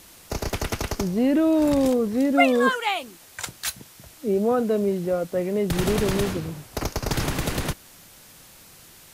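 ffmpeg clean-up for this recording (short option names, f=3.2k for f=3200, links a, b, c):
-af "afftdn=nr=20:nf=-49"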